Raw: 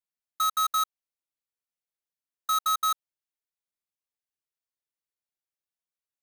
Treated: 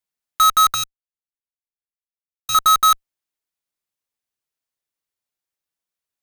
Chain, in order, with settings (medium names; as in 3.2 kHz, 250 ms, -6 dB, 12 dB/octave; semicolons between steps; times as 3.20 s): 0.74–2.55 s: amplifier tone stack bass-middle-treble 10-0-1; in parallel at -9.5 dB: fuzz box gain 61 dB, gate -55 dBFS; on the sum: trim +5.5 dB